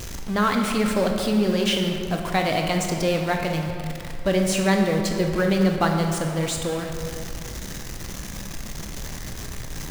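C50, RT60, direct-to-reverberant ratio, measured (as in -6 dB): 4.0 dB, 2.3 s, 2.5 dB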